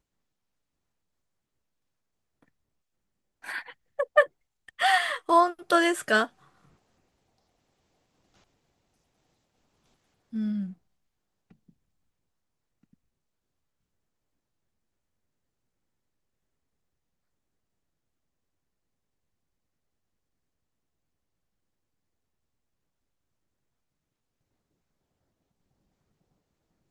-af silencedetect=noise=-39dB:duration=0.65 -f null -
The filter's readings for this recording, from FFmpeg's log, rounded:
silence_start: 0.00
silence_end: 3.44 | silence_duration: 3.44
silence_start: 6.26
silence_end: 10.33 | silence_duration: 4.07
silence_start: 10.72
silence_end: 26.91 | silence_duration: 16.19